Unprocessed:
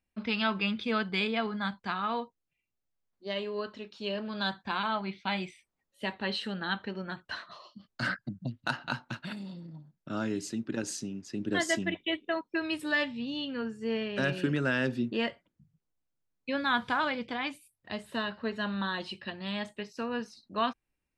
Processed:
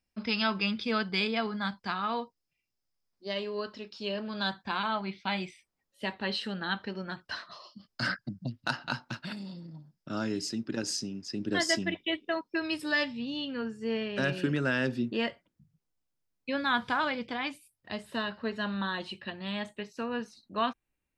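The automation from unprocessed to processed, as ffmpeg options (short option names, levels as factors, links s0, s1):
-af "asetnsamples=n=441:p=0,asendcmd='4.03 equalizer g 6;6.77 equalizer g 13;13.13 equalizer g 4;18.77 equalizer g -6',equalizer=f=5100:t=o:w=0.26:g=13.5"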